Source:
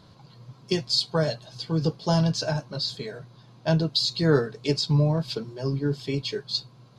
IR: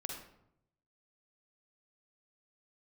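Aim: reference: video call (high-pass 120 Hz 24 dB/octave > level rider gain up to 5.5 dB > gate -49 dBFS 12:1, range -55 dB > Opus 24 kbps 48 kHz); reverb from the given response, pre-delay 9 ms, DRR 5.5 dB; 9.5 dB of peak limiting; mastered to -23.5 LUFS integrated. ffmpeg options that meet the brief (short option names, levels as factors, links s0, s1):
-filter_complex "[0:a]alimiter=limit=0.133:level=0:latency=1,asplit=2[s0][s1];[1:a]atrim=start_sample=2205,adelay=9[s2];[s1][s2]afir=irnorm=-1:irlink=0,volume=0.562[s3];[s0][s3]amix=inputs=2:normalize=0,highpass=f=120:w=0.5412,highpass=f=120:w=1.3066,dynaudnorm=m=1.88,agate=range=0.00178:threshold=0.00355:ratio=12,volume=2" -ar 48000 -c:a libopus -b:a 24k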